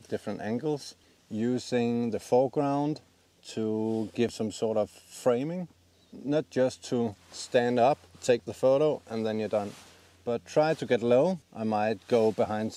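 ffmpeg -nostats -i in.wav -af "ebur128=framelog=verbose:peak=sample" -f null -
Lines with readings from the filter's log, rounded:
Integrated loudness:
  I:         -28.6 LUFS
  Threshold: -39.2 LUFS
Loudness range:
  LRA:         3.3 LU
  Threshold: -49.3 LUFS
  LRA low:   -31.1 LUFS
  LRA high:  -27.8 LUFS
Sample peak:
  Peak:      -11.1 dBFS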